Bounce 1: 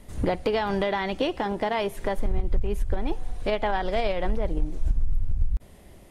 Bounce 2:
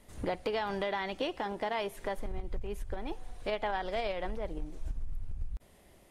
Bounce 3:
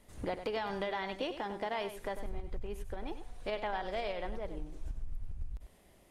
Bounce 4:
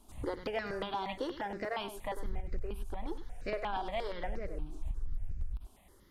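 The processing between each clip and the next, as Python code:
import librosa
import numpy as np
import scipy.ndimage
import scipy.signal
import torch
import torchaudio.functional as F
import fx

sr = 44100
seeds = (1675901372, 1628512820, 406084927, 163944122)

y1 = fx.low_shelf(x, sr, hz=300.0, db=-7.5)
y1 = y1 * librosa.db_to_amplitude(-6.0)
y2 = y1 + 10.0 ** (-10.5 / 20.0) * np.pad(y1, (int(98 * sr / 1000.0), 0))[:len(y1)]
y2 = y2 * librosa.db_to_amplitude(-3.0)
y3 = fx.phaser_held(y2, sr, hz=8.5, low_hz=520.0, high_hz=3300.0)
y3 = y3 * librosa.db_to_amplitude(3.5)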